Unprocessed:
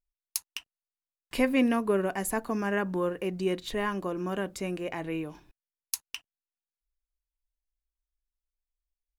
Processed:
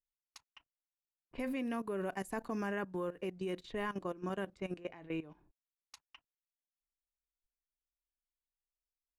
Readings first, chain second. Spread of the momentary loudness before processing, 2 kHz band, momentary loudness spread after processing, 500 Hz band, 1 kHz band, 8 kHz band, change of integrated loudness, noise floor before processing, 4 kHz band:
12 LU, -10.0 dB, 15 LU, -9.5 dB, -8.5 dB, -21.0 dB, -9.5 dB, under -85 dBFS, -13.0 dB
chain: level-controlled noise filter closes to 440 Hz, open at -27 dBFS; level held to a coarse grid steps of 16 dB; trim -4.5 dB

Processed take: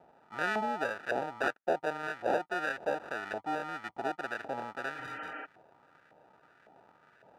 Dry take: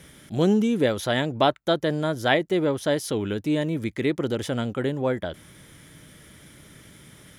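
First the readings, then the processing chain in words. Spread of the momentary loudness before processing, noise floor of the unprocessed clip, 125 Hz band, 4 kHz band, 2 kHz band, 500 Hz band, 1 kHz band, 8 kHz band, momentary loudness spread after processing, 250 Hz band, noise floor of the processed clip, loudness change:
6 LU, -51 dBFS, -24.5 dB, -16.5 dB, -3.5 dB, -11.0 dB, -4.0 dB, -16.5 dB, 9 LU, -19.0 dB, -65 dBFS, -10.5 dB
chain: sample-and-hold 41×; LFO band-pass saw up 1.8 Hz 720–1700 Hz; spectral replace 4.97–5.43 s, 200–3200 Hz before

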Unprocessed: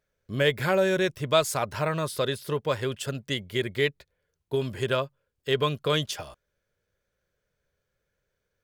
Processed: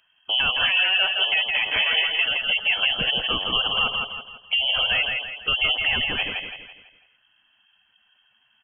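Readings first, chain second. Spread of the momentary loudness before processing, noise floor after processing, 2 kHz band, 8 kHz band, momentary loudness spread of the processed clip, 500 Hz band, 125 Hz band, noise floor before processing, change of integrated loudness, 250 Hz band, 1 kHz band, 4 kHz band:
10 LU, -65 dBFS, +11.0 dB, under -40 dB, 8 LU, -11.5 dB, -11.5 dB, -80 dBFS, +7.0 dB, -9.0 dB, +0.5 dB, +14.0 dB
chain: rattle on loud lows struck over -42 dBFS, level -32 dBFS; in parallel at +1.5 dB: peak limiter -18.5 dBFS, peak gain reduction 9.5 dB; on the sum: compression 5:1, threshold -24 dBFS, peak gain reduction 10.5 dB; saturation -22 dBFS, distortion -15 dB; on a send: feedback delay 166 ms, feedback 41%, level -4 dB; on the sum: spectral gate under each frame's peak -25 dB strong; frequency inversion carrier 3.2 kHz; trim +6.5 dB

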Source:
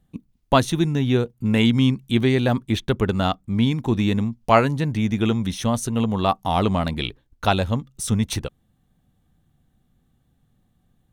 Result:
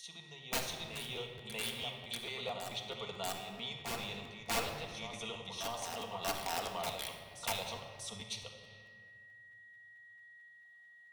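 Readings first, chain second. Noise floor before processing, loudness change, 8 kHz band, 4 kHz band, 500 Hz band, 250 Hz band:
-66 dBFS, -18.0 dB, -8.0 dB, -9.5 dB, -19.0 dB, -29.5 dB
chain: low-pass 2.6 kHz 12 dB/octave; differentiator; in parallel at -2 dB: level held to a coarse grid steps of 12 dB; on the sum: static phaser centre 680 Hz, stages 4; integer overflow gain 29.5 dB; whistle 1.9 kHz -72 dBFS; on a send: reverse echo 639 ms -6.5 dB; on the sum: simulated room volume 2600 m³, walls mixed, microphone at 1.7 m; crackling interface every 0.22 s, samples 512, repeat, from 0.71 s; tape noise reduction on one side only encoder only; trim +1 dB

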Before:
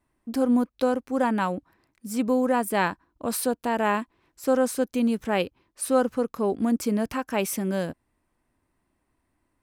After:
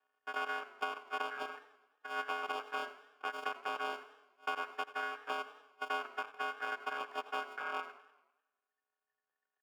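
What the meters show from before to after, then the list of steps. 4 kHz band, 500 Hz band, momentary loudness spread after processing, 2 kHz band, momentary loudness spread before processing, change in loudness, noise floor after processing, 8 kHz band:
-6.0 dB, -20.0 dB, 8 LU, -4.5 dB, 9 LU, -14.0 dB, under -85 dBFS, -26.0 dB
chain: sorted samples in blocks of 128 samples; reverb removal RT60 2 s; ring modulator 1.8 kHz; high-pass 520 Hz 12 dB/octave; compression, threshold -31 dBFS, peak gain reduction 12 dB; boxcar filter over 22 samples; on a send: feedback delay 83 ms, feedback 55%, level -17.5 dB; on the sum: modulated delay 99 ms, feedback 54%, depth 183 cents, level -20 dB; trim +7 dB

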